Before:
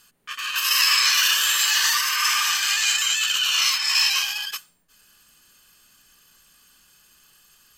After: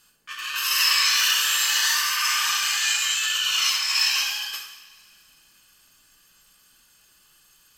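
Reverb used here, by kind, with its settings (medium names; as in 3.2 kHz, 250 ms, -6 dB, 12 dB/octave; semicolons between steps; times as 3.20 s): two-slope reverb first 0.83 s, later 2.7 s, from -18 dB, DRR 0 dB; trim -4.5 dB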